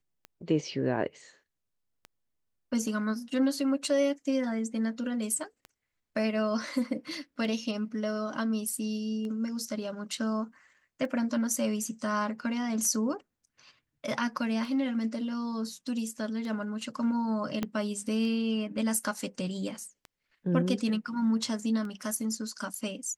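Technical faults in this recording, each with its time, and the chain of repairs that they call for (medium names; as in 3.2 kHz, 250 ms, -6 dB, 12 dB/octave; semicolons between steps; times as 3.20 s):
tick 33 1/3 rpm -28 dBFS
17.63 s: pop -17 dBFS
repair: de-click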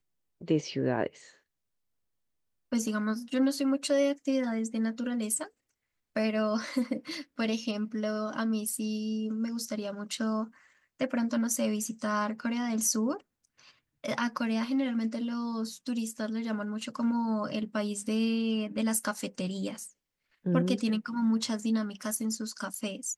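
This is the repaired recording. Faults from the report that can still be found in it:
17.63 s: pop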